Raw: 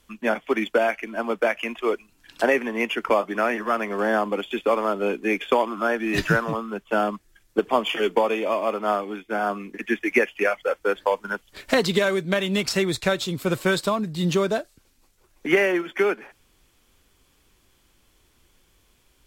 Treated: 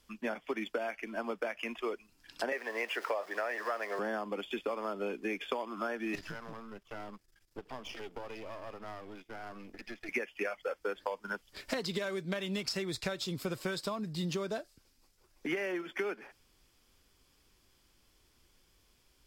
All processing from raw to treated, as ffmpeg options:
ffmpeg -i in.wav -filter_complex "[0:a]asettb=1/sr,asplit=3[link_01][link_02][link_03];[link_01]atrim=end=2.524[link_04];[link_02]atrim=start=2.52:end=3.99,asetpts=PTS-STARTPTS,afade=type=in:duration=0.004:curve=qsin,afade=type=out:start_time=1.466:duration=0.004:curve=qsin,aeval=exprs='val(0)+0.5*0.02*sgn(val(0))':channel_layout=same,highpass=frequency=540:width_type=q:width=1.8,equalizer=frequency=1800:width=4.8:gain=8[link_05];[link_03]atrim=start=3.986[link_06];[link_04][link_05]acrossfade=duration=0.004:curve1=hsin:curve2=qsin[link_07];[link_07][link_06]acrossfade=duration=0.004:curve1=qsin:curve2=hsin,asettb=1/sr,asplit=3[link_08][link_09][link_10];[link_08]atrim=end=6.154[link_11];[link_09]atrim=start=6.15:end=10.09,asetpts=PTS-STARTPTS,afade=type=in:duration=0.004:curve=qsin,afade=type=out:start_time=3.936:duration=0.004:curve=qsin,aeval=exprs='if(lt(val(0),0),0.251*val(0),val(0))':channel_layout=same,acompressor=threshold=-37dB:ratio=2.5:attack=3.2:release=140:knee=1:detection=peak[link_12];[link_10]atrim=start=10.086[link_13];[link_11][link_12]acrossfade=duration=0.004:curve1=hsin:curve2=qsin[link_14];[link_14][link_13]acrossfade=duration=0.004:curve1=qsin:curve2=hsin,equalizer=frequency=5000:width=5.1:gain=8.5,acompressor=threshold=-25dB:ratio=6,volume=-7dB" out.wav

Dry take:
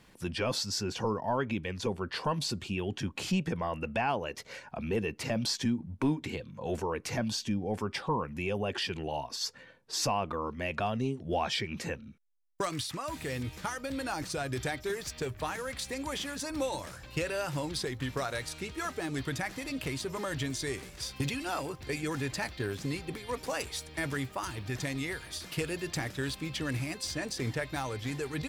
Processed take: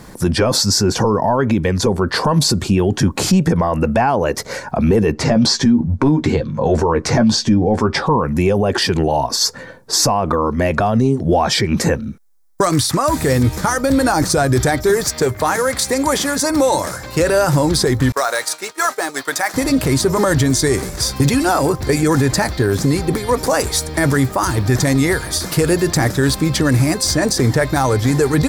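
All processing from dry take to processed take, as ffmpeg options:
ffmpeg -i in.wav -filter_complex "[0:a]asettb=1/sr,asplit=3[link_01][link_02][link_03];[link_01]atrim=end=5.124[link_04];[link_02]atrim=start=5.12:end=8.06,asetpts=PTS-STARTPTS,afade=type=in:duration=0.004:curve=qsin,afade=type=out:start_time=2.936:duration=0.004:curve=qsin,lowpass=5500,asplit=2[link_05][link_06];[link_06]adelay=13,volume=-8.5dB[link_07];[link_05][link_07]amix=inputs=2:normalize=0,atrim=end_sample=129654[link_08];[link_03]atrim=start=8.056[link_09];[link_04][link_08]acrossfade=duration=0.004:curve1=hsin:curve2=qsin[link_10];[link_10][link_09]acrossfade=duration=0.004:curve1=qsin:curve2=hsin,asettb=1/sr,asplit=3[link_11][link_12][link_13];[link_11]atrim=end=15.054[link_14];[link_12]atrim=start=15.05:end=17.2,asetpts=PTS-STARTPTS,afade=type=in:duration=0.004:curve=qsin,afade=type=out:start_time=2.146:duration=0.004:curve=qsin,highpass=55,lowshelf=frequency=220:gain=-7.5,aeval=exprs='val(0)+0.001*sin(2*PI*2100*n/s)':channel_layout=same[link_15];[link_13]atrim=start=17.196[link_16];[link_14][link_15]acrossfade=duration=0.004:curve1=hsin:curve2=qsin[link_17];[link_17][link_16]acrossfade=duration=0.004:curve1=qsin:curve2=hsin,asettb=1/sr,asplit=3[link_18][link_19][link_20];[link_18]atrim=end=18.124[link_21];[link_19]atrim=start=18.12:end=19.54,asetpts=PTS-STARTPTS,afade=type=in:duration=0.004:curve=qsin,afade=type=out:start_time=1.416:duration=0.004:curve=qsin,highpass=700,agate=range=-33dB:threshold=-43dB:ratio=3:release=100:detection=peak,acrusher=bits=6:mode=log:mix=0:aa=0.000001[link_22];[link_20]atrim=start=19.536[link_23];[link_21][link_22]acrossfade=duration=0.004:curve1=hsin:curve2=qsin[link_24];[link_24][link_23]acrossfade=duration=0.004:curve1=qsin:curve2=hsin,equalizer=frequency=2800:width=1.5:gain=-13.5,alimiter=level_in=27.5dB:limit=-1dB:release=50:level=0:latency=1,volume=-5dB" out.wav

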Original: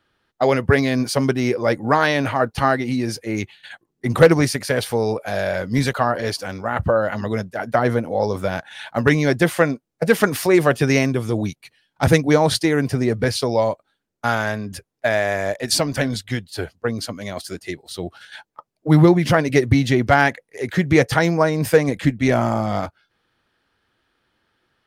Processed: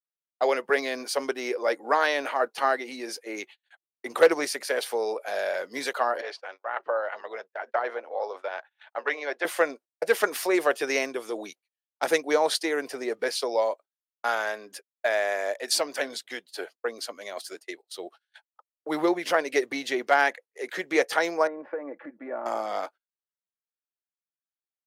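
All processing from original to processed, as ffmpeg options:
ffmpeg -i in.wav -filter_complex "[0:a]asettb=1/sr,asplit=3[link_01][link_02][link_03];[link_01]atrim=end=6.214[link_04];[link_02]atrim=start=6.21:end=9.45,asetpts=PTS-STARTPTS,afade=type=in:duration=0.004:curve=qsin,afade=type=out:start_time=3.236:duration=0.004:curve=qsin,tremolo=f=280:d=0.333,highpass=520,lowpass=3200[link_05];[link_03]atrim=start=9.446[link_06];[link_04][link_05]acrossfade=duration=0.004:curve1=hsin:curve2=qsin[link_07];[link_07][link_06]acrossfade=duration=0.004:curve1=qsin:curve2=hsin,asettb=1/sr,asplit=3[link_08][link_09][link_10];[link_08]atrim=end=21.474[link_11];[link_09]atrim=start=21.47:end=22.46,asetpts=PTS-STARTPTS,afade=type=in:duration=0.004:curve=qsin,afade=type=out:start_time=0.986:duration=0.004:curve=qsin,lowpass=frequency=1500:width=0.5412,lowpass=frequency=1500:width=1.3066,acompressor=threshold=-22dB:ratio=4:attack=3.2:release=140:knee=1:detection=peak,aecho=1:1:3.5:0.48,atrim=end_sample=43659[link_12];[link_10]atrim=start=22.456[link_13];[link_11][link_12]acrossfade=duration=0.004:curve1=hsin:curve2=qsin[link_14];[link_14][link_13]acrossfade=duration=0.004:curve1=qsin:curve2=hsin,agate=range=-35dB:threshold=-35dB:ratio=16:detection=peak,highpass=frequency=380:width=0.5412,highpass=frequency=380:width=1.3066,volume=-5.5dB" out.wav

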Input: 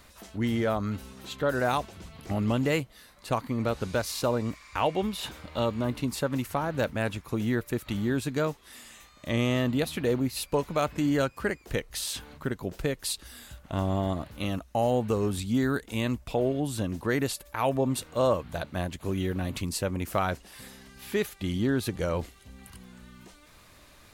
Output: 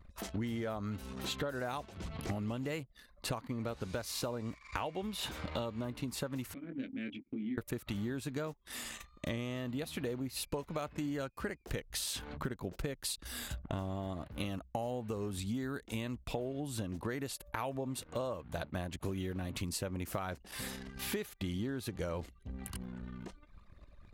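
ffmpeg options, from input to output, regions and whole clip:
ffmpeg -i in.wav -filter_complex "[0:a]asettb=1/sr,asplit=3[link_01][link_02][link_03];[link_01]atrim=end=6.544[link_04];[link_02]atrim=start=6.54:end=7.58,asetpts=PTS-STARTPTS,afade=type=in:duration=0.004:curve=qsin,afade=type=out:start_time=1.036:duration=0.004:curve=qsin,asplit=3[link_05][link_06][link_07];[link_05]bandpass=frequency=270:width_type=q:width=8,volume=0dB[link_08];[link_06]bandpass=frequency=2290:width_type=q:width=8,volume=-6dB[link_09];[link_07]bandpass=frequency=3010:width_type=q:width=8,volume=-9dB[link_10];[link_08][link_09][link_10]amix=inputs=3:normalize=0,acompressor=threshold=-48dB:ratio=1.5:attack=3.2:release=140:knee=1:detection=peak,asplit=2[link_11][link_12];[link_12]adelay=23,volume=-4dB[link_13];[link_11][link_13]amix=inputs=2:normalize=0,atrim=end_sample=45864[link_14];[link_03]atrim=start=7.576[link_15];[link_04][link_14]acrossfade=duration=0.004:curve1=hsin:curve2=qsin[link_16];[link_16][link_15]acrossfade=duration=0.004:curve1=qsin:curve2=hsin,anlmdn=0.00631,acompressor=threshold=-40dB:ratio=12,volume=5.5dB" out.wav

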